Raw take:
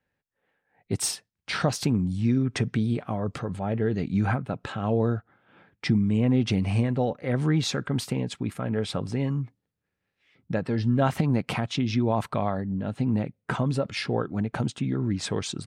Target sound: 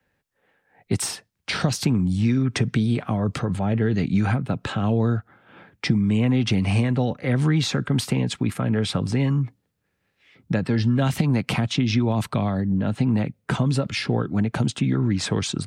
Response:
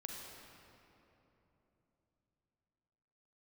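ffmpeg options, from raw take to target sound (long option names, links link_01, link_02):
-filter_complex "[0:a]acrossover=split=91|320|770|2400[link_01][link_02][link_03][link_04][link_05];[link_01]acompressor=threshold=-43dB:ratio=4[link_06];[link_02]acompressor=threshold=-28dB:ratio=4[link_07];[link_03]acompressor=threshold=-43dB:ratio=4[link_08];[link_04]acompressor=threshold=-42dB:ratio=4[link_09];[link_05]acompressor=threshold=-36dB:ratio=4[link_10];[link_06][link_07][link_08][link_09][link_10]amix=inputs=5:normalize=0,volume=8.5dB"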